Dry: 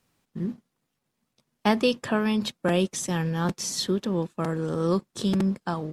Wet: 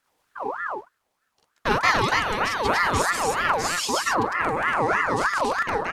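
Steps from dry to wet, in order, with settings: loudspeakers at several distances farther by 15 m 0 dB, 62 m 0 dB, 98 m 0 dB; ring modulator with a swept carrier 1.1 kHz, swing 45%, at 3.2 Hz

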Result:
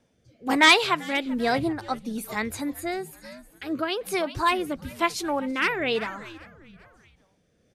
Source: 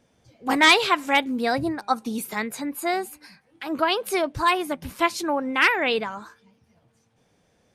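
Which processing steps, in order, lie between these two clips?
frequency-shifting echo 391 ms, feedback 40%, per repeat -130 Hz, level -17.5 dB; rotary cabinet horn 1.1 Hz

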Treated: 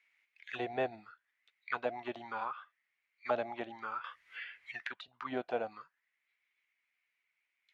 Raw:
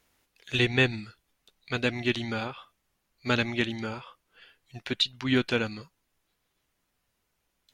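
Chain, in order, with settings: auto-wah 680–2200 Hz, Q 7.6, down, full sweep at -23.5 dBFS; 4.04–5.08 s: three bands compressed up and down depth 100%; trim +8.5 dB

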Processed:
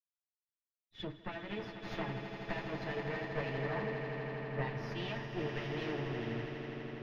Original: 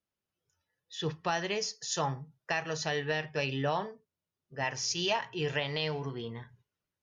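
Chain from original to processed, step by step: comb filter that takes the minimum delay 9.1 ms; graphic EQ 125/250/2000/8000 Hz +4/+7/+4/-8 dB; compression 16:1, threshold -37 dBFS, peak gain reduction 13.5 dB; distance through air 310 m; echo with a slow build-up 82 ms, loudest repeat 8, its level -9.5 dB; three bands expanded up and down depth 100%; trim +1 dB

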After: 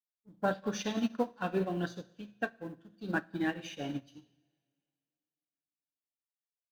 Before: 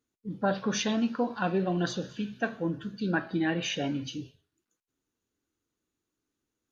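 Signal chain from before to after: companding laws mixed up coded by A; two-slope reverb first 0.86 s, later 2.7 s, from -18 dB, DRR 6.5 dB; upward expansion 2.5:1, over -38 dBFS

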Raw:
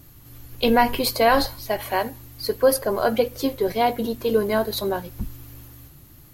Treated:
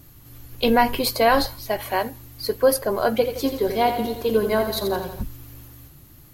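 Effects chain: 3.13–5.23 s: bit-crushed delay 85 ms, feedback 55%, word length 8-bit, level -8 dB

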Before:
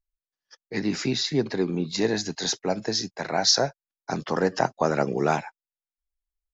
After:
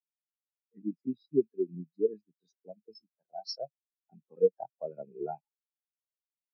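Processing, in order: rattle on loud lows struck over -35 dBFS, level -22 dBFS; spectral contrast expander 4:1; trim -6 dB

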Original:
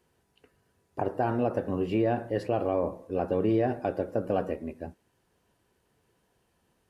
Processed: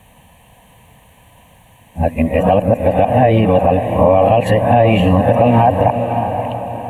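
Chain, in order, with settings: reverse the whole clip; compression, threshold -27 dBFS, peak gain reduction 6.5 dB; static phaser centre 1.4 kHz, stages 6; echo that smears into a reverb 571 ms, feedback 45%, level -10.5 dB; loudness maximiser +28.5 dB; trim -1 dB

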